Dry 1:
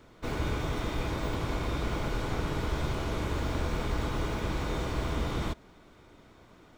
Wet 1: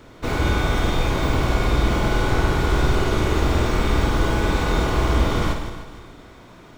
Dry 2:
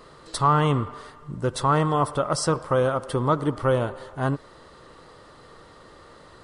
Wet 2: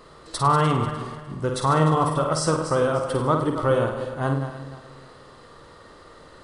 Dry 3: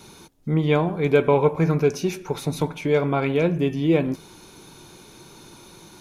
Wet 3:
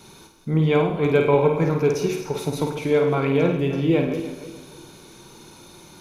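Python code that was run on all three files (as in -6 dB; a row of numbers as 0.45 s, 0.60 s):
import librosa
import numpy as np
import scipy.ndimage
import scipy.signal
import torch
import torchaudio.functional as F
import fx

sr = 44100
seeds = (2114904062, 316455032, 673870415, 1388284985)

y = fx.reverse_delay_fb(x, sr, ms=150, feedback_pct=55, wet_db=-10)
y = fx.room_flutter(y, sr, wall_m=8.8, rt60_s=0.5)
y = librosa.util.normalize(y) * 10.0 ** (-6 / 20.0)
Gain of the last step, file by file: +9.5 dB, -0.5 dB, -1.0 dB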